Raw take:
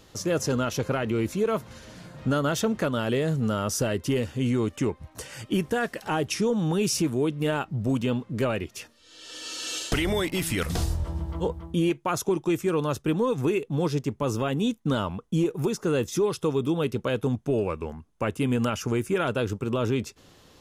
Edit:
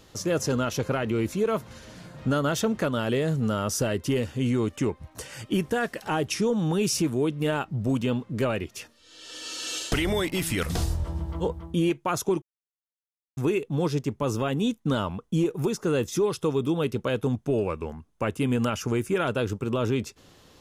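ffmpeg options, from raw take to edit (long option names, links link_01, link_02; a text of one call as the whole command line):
ffmpeg -i in.wav -filter_complex "[0:a]asplit=3[link_01][link_02][link_03];[link_01]atrim=end=12.42,asetpts=PTS-STARTPTS,afade=type=out:start_time=12.416:duration=0.004:curve=hsin[link_04];[link_02]atrim=start=12.42:end=13.37,asetpts=PTS-STARTPTS,volume=0[link_05];[link_03]atrim=start=13.37,asetpts=PTS-STARTPTS,afade=type=in:duration=0.004:curve=hsin[link_06];[link_04][link_05][link_06]concat=n=3:v=0:a=1" out.wav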